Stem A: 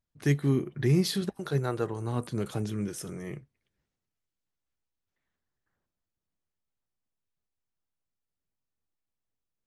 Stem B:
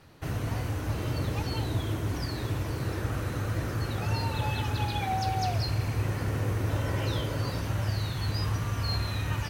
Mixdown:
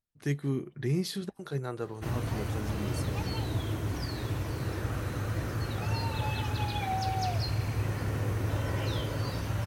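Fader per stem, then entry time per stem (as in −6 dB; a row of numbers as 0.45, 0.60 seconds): −5.5, −2.0 decibels; 0.00, 1.80 seconds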